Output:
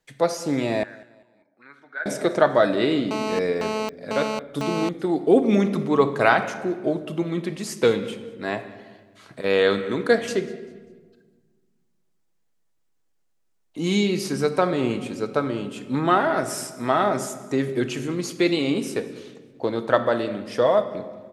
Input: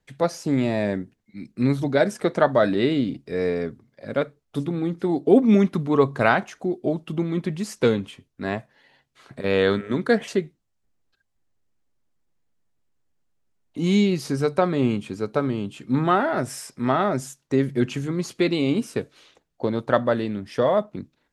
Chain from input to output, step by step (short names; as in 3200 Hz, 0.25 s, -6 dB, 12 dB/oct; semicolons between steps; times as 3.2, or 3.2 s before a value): tone controls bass -8 dB, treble +3 dB; reverb RT60 1.5 s, pre-delay 6 ms, DRR 8.5 dB; 0.83–2.06 auto-wah 660–1500 Hz, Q 7.7, up, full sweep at -27 dBFS; feedback echo 0.197 s, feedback 37%, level -22.5 dB; 3.11–4.89 GSM buzz -28 dBFS; gain +1 dB